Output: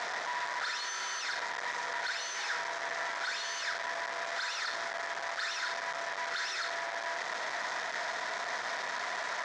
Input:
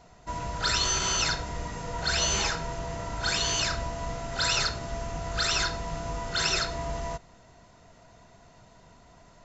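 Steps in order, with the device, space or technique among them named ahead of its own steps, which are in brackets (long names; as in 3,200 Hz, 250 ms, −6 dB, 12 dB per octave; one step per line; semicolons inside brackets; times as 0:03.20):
home computer beeper (sign of each sample alone; loudspeaker in its box 770–5,400 Hz, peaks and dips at 1,800 Hz +8 dB, 2,800 Hz −9 dB, 4,400 Hz −4 dB)
level −1.5 dB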